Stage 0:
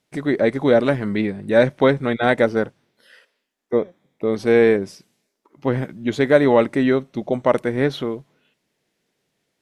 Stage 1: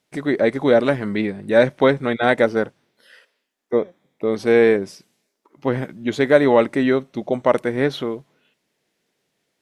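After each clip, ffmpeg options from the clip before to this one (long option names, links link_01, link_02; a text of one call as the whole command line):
ffmpeg -i in.wav -af "lowshelf=frequency=160:gain=-6,volume=1dB" out.wav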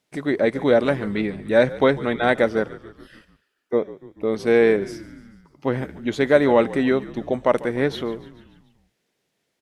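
ffmpeg -i in.wav -filter_complex "[0:a]asplit=6[link_01][link_02][link_03][link_04][link_05][link_06];[link_02]adelay=145,afreqshift=-53,volume=-18dB[link_07];[link_03]adelay=290,afreqshift=-106,volume=-22.6dB[link_08];[link_04]adelay=435,afreqshift=-159,volume=-27.2dB[link_09];[link_05]adelay=580,afreqshift=-212,volume=-31.7dB[link_10];[link_06]adelay=725,afreqshift=-265,volume=-36.3dB[link_11];[link_01][link_07][link_08][link_09][link_10][link_11]amix=inputs=6:normalize=0,volume=-2dB" out.wav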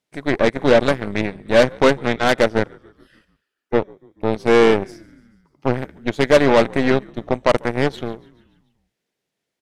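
ffmpeg -i in.wav -af "aeval=exprs='0.708*(cos(1*acos(clip(val(0)/0.708,-1,1)))-cos(1*PI/2))+0.0794*(cos(7*acos(clip(val(0)/0.708,-1,1)))-cos(7*PI/2))+0.0355*(cos(8*acos(clip(val(0)/0.708,-1,1)))-cos(8*PI/2))':channel_layout=same,aeval=exprs='0.708*sin(PI/2*1.78*val(0)/0.708)':channel_layout=same,volume=-1.5dB" out.wav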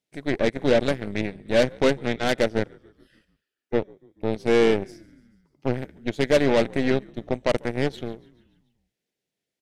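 ffmpeg -i in.wav -af "equalizer=frequency=1100:width=1.4:gain=-8,volume=-4.5dB" out.wav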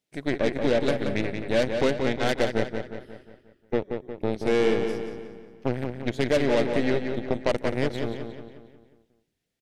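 ffmpeg -i in.wav -filter_complex "[0:a]acompressor=threshold=-24dB:ratio=2,asplit=2[link_01][link_02];[link_02]adelay=179,lowpass=frequency=4900:poles=1,volume=-6dB,asplit=2[link_03][link_04];[link_04]adelay=179,lowpass=frequency=4900:poles=1,volume=0.5,asplit=2[link_05][link_06];[link_06]adelay=179,lowpass=frequency=4900:poles=1,volume=0.5,asplit=2[link_07][link_08];[link_08]adelay=179,lowpass=frequency=4900:poles=1,volume=0.5,asplit=2[link_09][link_10];[link_10]adelay=179,lowpass=frequency=4900:poles=1,volume=0.5,asplit=2[link_11][link_12];[link_12]adelay=179,lowpass=frequency=4900:poles=1,volume=0.5[link_13];[link_03][link_05][link_07][link_09][link_11][link_13]amix=inputs=6:normalize=0[link_14];[link_01][link_14]amix=inputs=2:normalize=0,volume=1.5dB" out.wav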